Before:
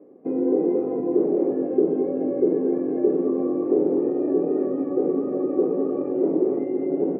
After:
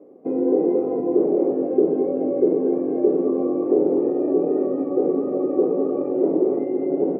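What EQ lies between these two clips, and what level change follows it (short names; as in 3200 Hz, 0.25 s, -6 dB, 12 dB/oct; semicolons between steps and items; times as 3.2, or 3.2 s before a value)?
bell 640 Hz +4.5 dB 1.3 oct; notch 1700 Hz, Q 13; 0.0 dB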